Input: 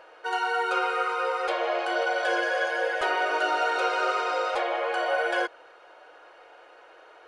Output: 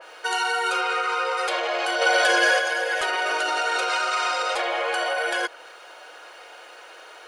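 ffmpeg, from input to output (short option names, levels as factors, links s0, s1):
-filter_complex "[0:a]asplit=3[s0][s1][s2];[s0]afade=t=out:st=0.8:d=0.02[s3];[s1]lowpass=6600,afade=t=in:st=0.8:d=0.02,afade=t=out:st=1.36:d=0.02[s4];[s2]afade=t=in:st=1.36:d=0.02[s5];[s3][s4][s5]amix=inputs=3:normalize=0,asettb=1/sr,asplit=3[s6][s7][s8];[s6]atrim=end=3.894[s9];[s7]atrim=start=3.89:end=4.43,asetpts=PTS-STARTPTS,afade=t=in:d=0.004:c=qsin,afade=t=out:st=0.536:d=0.004:c=qsin,equalizer=f=440:w=3.7:g=-12.5[s10];[s8]atrim=start=4.426[s11];[s9][s10]acrossfade=d=0.004:c1=hsin:c2=qsin[s12];[s12][s11]acrossfade=d=0.004:c1=qsin:c2=hsin,alimiter=limit=0.0708:level=0:latency=1:release=43,asplit=3[s13][s14][s15];[s13]afade=t=out:st=2:d=0.02[s16];[s14]acontrast=39,afade=t=in:st=2:d=0.02,afade=t=out:st=2.58:d=0.02[s17];[s15]afade=t=in:st=2.58:d=0.02[s18];[s16][s17][s18]amix=inputs=3:normalize=0,crystalizer=i=6.5:c=0,adynamicequalizer=threshold=0.0126:dfrequency=2700:dqfactor=0.7:tfrequency=2700:tqfactor=0.7:attack=5:release=100:ratio=0.375:range=1.5:mode=cutabove:tftype=highshelf,volume=1.41"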